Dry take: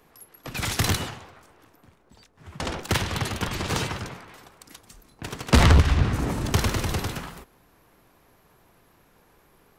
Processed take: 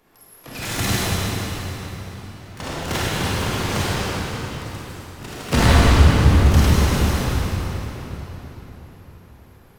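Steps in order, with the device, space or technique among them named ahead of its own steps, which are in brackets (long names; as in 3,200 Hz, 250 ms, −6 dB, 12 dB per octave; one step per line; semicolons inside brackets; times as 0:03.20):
shimmer-style reverb (pitch-shifted copies added +12 semitones −9 dB; convolution reverb RT60 4.2 s, pre-delay 28 ms, DRR −8 dB)
level −4 dB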